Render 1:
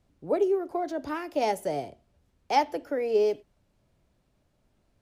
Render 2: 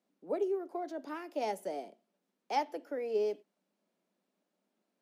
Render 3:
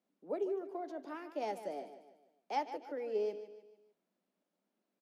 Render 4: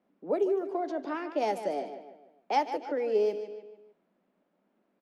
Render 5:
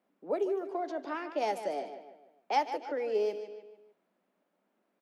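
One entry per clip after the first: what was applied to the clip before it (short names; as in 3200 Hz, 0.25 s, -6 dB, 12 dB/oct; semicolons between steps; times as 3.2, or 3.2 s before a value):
elliptic high-pass 190 Hz, stop band 40 dB; gain -8 dB
high shelf 6000 Hz -7 dB; on a send: feedback echo 0.149 s, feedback 43%, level -12 dB; on the sum: gain -3.5 dB
low-pass opened by the level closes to 2100 Hz, open at -34 dBFS; in parallel at -2 dB: compressor, threshold -44 dBFS, peak gain reduction 14 dB; on the sum: gain +7 dB
low shelf 370 Hz -8.5 dB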